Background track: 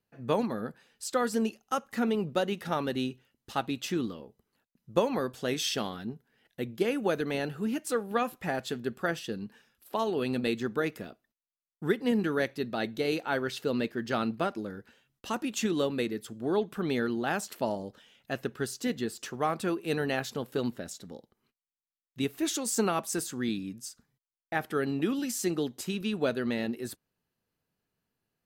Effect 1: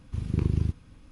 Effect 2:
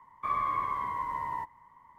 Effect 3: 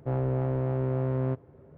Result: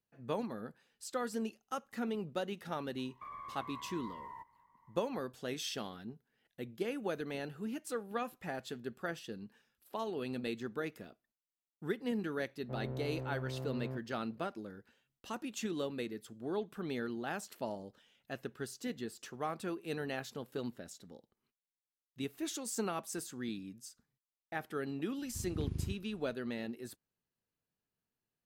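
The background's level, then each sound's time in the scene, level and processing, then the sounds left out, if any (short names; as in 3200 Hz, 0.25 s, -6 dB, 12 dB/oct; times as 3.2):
background track -9 dB
2.98 add 2 -11 dB + limiter -29 dBFS
12.63 add 3 -13.5 dB
25.22 add 1 -12.5 dB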